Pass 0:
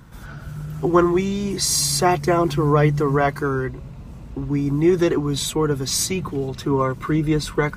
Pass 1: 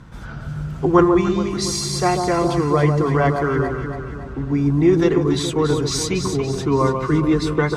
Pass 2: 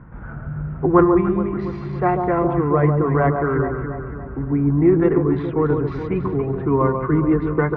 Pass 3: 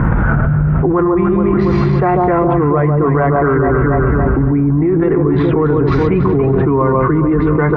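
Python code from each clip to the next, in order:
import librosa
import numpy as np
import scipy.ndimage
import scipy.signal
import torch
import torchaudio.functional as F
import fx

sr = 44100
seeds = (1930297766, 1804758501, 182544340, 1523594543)

y1 = fx.air_absorb(x, sr, metres=60.0)
y1 = fx.echo_alternate(y1, sr, ms=141, hz=1200.0, feedback_pct=71, wet_db=-5.0)
y1 = fx.rider(y1, sr, range_db=5, speed_s=2.0)
y2 = fx.wiener(y1, sr, points=9)
y2 = scipy.signal.sosfilt(scipy.signal.butter(4, 2000.0, 'lowpass', fs=sr, output='sos'), y2)
y3 = fx.env_flatten(y2, sr, amount_pct=100)
y3 = y3 * librosa.db_to_amplitude(-2.5)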